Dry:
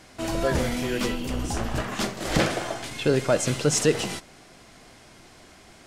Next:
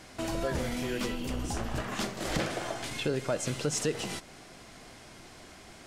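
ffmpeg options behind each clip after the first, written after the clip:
-af "acompressor=threshold=-34dB:ratio=2"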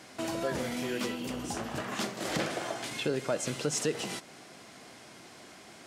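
-af "highpass=150"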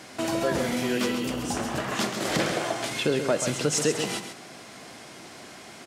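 -af "aecho=1:1:134:0.398,volume=6dB"

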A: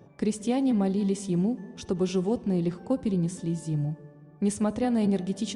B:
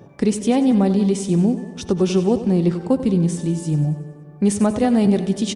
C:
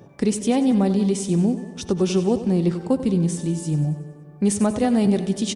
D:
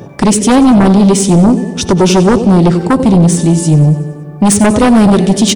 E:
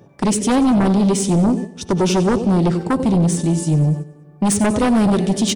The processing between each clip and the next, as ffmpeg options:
-af "aecho=1:1:94|188|282|376|470|564:0.224|0.121|0.0653|0.0353|0.019|0.0103,volume=8.5dB"
-af "highshelf=f=4.7k:g=4.5,volume=-2.5dB"
-af "aeval=exprs='0.398*sin(PI/2*2.51*val(0)/0.398)':c=same,volume=5dB"
-af "agate=range=-9dB:threshold=-14dB:ratio=16:detection=peak,volume=-8.5dB"

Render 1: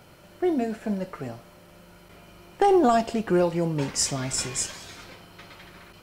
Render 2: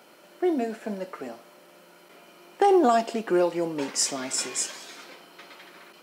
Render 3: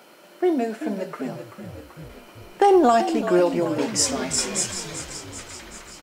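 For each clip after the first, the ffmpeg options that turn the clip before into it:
-af "highpass=f=240:w=0.5412,highpass=f=240:w=1.3066"
-filter_complex "[0:a]asplit=9[a][b][c][d][e][f][g][h][i];[b]adelay=385,afreqshift=-51,volume=-10.5dB[j];[c]adelay=770,afreqshift=-102,volume=-14.7dB[k];[d]adelay=1155,afreqshift=-153,volume=-18.8dB[l];[e]adelay=1540,afreqshift=-204,volume=-23dB[m];[f]adelay=1925,afreqshift=-255,volume=-27.1dB[n];[g]adelay=2310,afreqshift=-306,volume=-31.3dB[o];[h]adelay=2695,afreqshift=-357,volume=-35.4dB[p];[i]adelay=3080,afreqshift=-408,volume=-39.6dB[q];[a][j][k][l][m][n][o][p][q]amix=inputs=9:normalize=0,volume=3.5dB"

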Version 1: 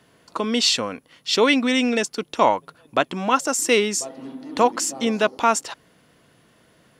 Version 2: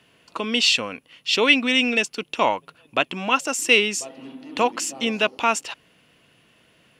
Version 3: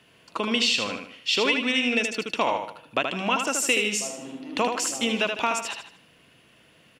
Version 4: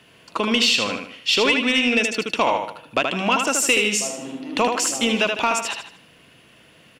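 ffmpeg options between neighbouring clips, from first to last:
-af "equalizer=f=2.7k:t=o:w=0.58:g=12,volume=-3.5dB"
-filter_complex "[0:a]acompressor=threshold=-20dB:ratio=6,asplit=2[a][b];[b]aecho=0:1:77|154|231|308|385:0.531|0.202|0.0767|0.0291|0.0111[c];[a][c]amix=inputs=2:normalize=0"
-af "asoftclip=type=tanh:threshold=-12.5dB,volume=5.5dB"

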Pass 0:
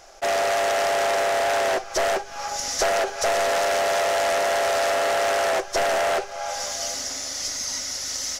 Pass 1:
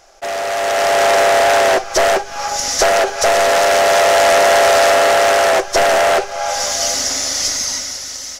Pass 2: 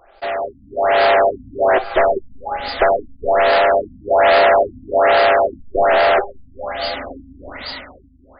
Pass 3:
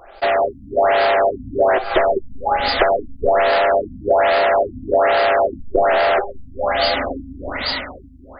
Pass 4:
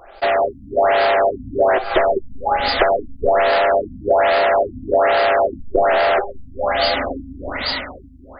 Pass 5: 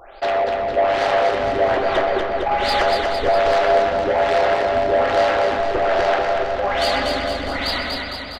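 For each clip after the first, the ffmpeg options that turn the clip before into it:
-af "dynaudnorm=f=150:g=11:m=12.5dB"
-af "equalizer=f=160:w=5.6:g=-13.5,afftfilt=real='re*lt(b*sr/1024,260*pow(5000/260,0.5+0.5*sin(2*PI*1.2*pts/sr)))':imag='im*lt(b*sr/1024,260*pow(5000/260,0.5+0.5*sin(2*PI*1.2*pts/sr)))':win_size=1024:overlap=0.75"
-af "acompressor=threshold=-19dB:ratio=12,volume=7dB"
-af anull
-filter_complex "[0:a]asplit=2[a][b];[b]aecho=0:1:125:0.282[c];[a][c]amix=inputs=2:normalize=0,asoftclip=type=tanh:threshold=-14.5dB,asplit=2[d][e];[e]aecho=0:1:240|456|650.4|825.4|982.8:0.631|0.398|0.251|0.158|0.1[f];[d][f]amix=inputs=2:normalize=0"

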